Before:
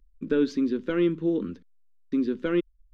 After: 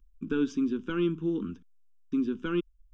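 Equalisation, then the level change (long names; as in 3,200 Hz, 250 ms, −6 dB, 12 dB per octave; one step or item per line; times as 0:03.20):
phaser with its sweep stopped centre 2,900 Hz, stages 8
0.0 dB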